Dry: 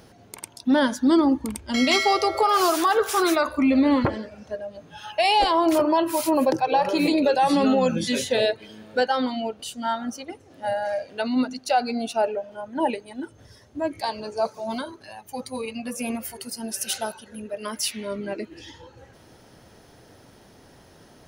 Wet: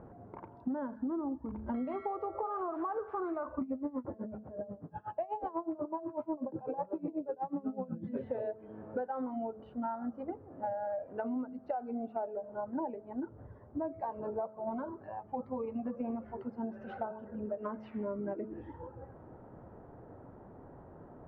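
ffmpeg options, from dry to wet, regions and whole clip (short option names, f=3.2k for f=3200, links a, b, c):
-filter_complex "[0:a]asettb=1/sr,asplit=3[a][b][c];[a]atrim=end=3.614[d];[b]atrim=start=3.61:end=8.17,asetpts=PTS-STARTPTS,afade=t=in:d=0.004:c=qsin,afade=t=out:st=4.556:d=0.004:c=qsin,highpass=91,lowshelf=f=450:g=8.5,aeval=exprs='val(0)*pow(10,-23*(0.5-0.5*cos(2*PI*8.1*n/s))/20)':c=same[e];[c]atrim=start=8.166[f];[d][e]acrossfade=d=0.004:c1=hsin:c2=qsin[g];[g][f]acrossfade=d=0.004:c1=qsin:c2=hsin,lowpass=f=1.2k:w=0.5412,lowpass=f=1.2k:w=1.3066,bandreject=f=216.9:t=h:w=4,bandreject=f=433.8:t=h:w=4,bandreject=f=650.7:t=h:w=4,acompressor=threshold=-33dB:ratio=16"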